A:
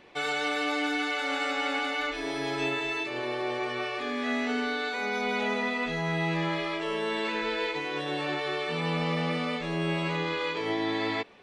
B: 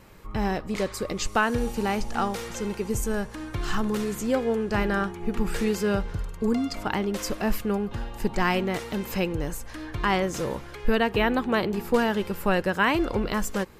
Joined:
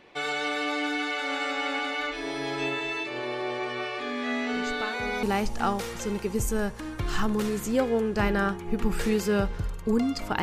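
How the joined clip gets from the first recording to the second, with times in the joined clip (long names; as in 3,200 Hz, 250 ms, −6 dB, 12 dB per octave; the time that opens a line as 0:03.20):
A
0:04.52: mix in B from 0:01.07 0.71 s −13 dB
0:05.23: continue with B from 0:01.78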